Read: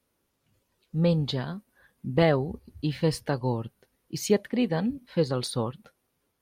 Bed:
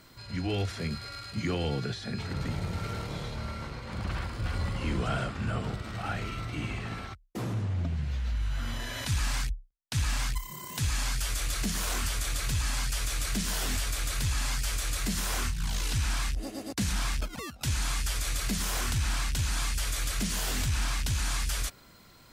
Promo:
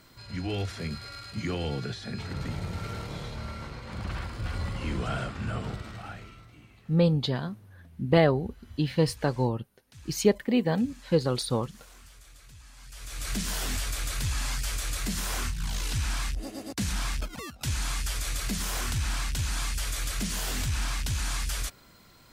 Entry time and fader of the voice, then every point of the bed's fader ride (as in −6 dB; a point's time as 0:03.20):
5.95 s, +1.0 dB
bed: 0:05.80 −1 dB
0:06.70 −21.5 dB
0:12.75 −21.5 dB
0:13.31 −0.5 dB